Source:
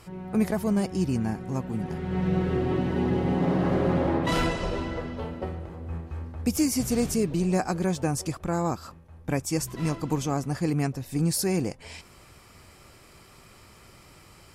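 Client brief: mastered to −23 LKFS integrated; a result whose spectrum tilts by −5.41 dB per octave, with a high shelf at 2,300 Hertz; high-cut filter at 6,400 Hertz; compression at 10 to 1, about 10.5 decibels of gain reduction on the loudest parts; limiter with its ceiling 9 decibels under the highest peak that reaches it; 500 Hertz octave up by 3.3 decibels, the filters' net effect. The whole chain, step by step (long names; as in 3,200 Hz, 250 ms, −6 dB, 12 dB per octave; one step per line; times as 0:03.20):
low-pass filter 6,400 Hz
parametric band 500 Hz +4 dB
high-shelf EQ 2,300 Hz +5 dB
downward compressor 10 to 1, threshold −29 dBFS
level +14 dB
brickwall limiter −13 dBFS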